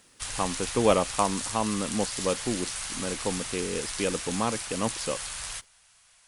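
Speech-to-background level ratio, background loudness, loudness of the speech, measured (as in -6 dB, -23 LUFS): 3.0 dB, -33.0 LUFS, -30.0 LUFS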